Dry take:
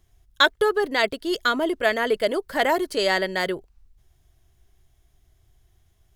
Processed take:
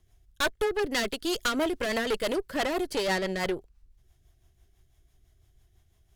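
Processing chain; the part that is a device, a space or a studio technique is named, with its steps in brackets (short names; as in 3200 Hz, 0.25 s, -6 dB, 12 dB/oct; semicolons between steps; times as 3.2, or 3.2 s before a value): 0.9–2.36 high shelf 2500 Hz +7 dB; overdriven rotary cabinet (tube stage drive 25 dB, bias 0.7; rotary speaker horn 6 Hz); gain +3.5 dB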